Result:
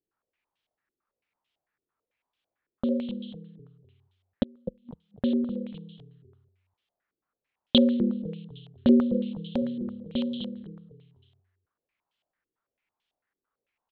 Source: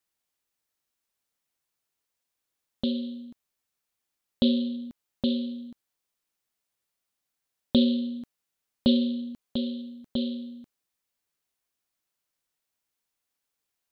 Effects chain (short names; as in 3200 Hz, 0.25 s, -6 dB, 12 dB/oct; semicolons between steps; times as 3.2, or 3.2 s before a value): 4.43–4.89 flipped gate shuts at -30 dBFS, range -33 dB; frequency-shifting echo 0.252 s, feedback 38%, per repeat -37 Hz, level -11 dB; stepped low-pass 9 Hz 380–3200 Hz